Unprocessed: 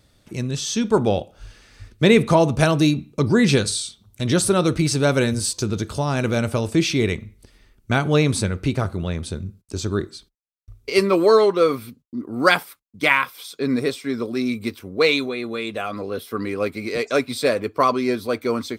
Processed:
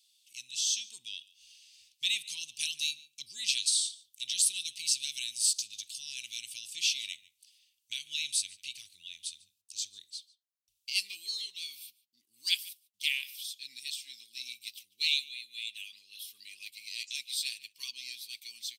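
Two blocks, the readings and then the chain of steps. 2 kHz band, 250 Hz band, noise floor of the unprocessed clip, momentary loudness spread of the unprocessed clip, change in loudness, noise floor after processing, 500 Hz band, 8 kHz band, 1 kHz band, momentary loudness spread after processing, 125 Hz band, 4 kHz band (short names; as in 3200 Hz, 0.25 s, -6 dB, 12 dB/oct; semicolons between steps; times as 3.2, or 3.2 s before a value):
-15.0 dB, under -40 dB, -61 dBFS, 12 LU, -12.0 dB, -80 dBFS, under -40 dB, -2.0 dB, under -40 dB, 17 LU, under -40 dB, -2.5 dB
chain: elliptic high-pass 2800 Hz, stop band 50 dB; outdoor echo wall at 25 m, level -21 dB; gain -2 dB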